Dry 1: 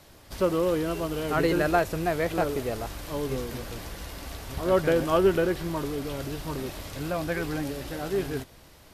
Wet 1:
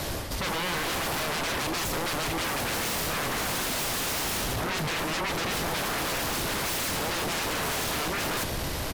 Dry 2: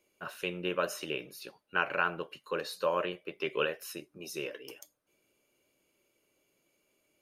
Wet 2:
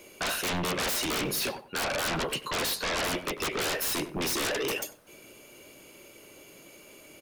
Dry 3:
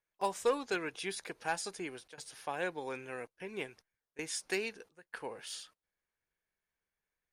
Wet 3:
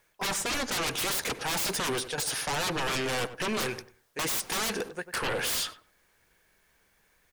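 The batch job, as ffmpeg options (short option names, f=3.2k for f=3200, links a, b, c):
-filter_complex "[0:a]areverse,acompressor=threshold=-36dB:ratio=10,areverse,aeval=exprs='0.0473*sin(PI/2*8.91*val(0)/0.0473)':c=same,asplit=2[a][b];[b]adelay=95,lowpass=f=1.5k:p=1,volume=-11.5dB,asplit=2[c][d];[d]adelay=95,lowpass=f=1.5k:p=1,volume=0.23,asplit=2[e][f];[f]adelay=95,lowpass=f=1.5k:p=1,volume=0.23[g];[a][c][e][g]amix=inputs=4:normalize=0"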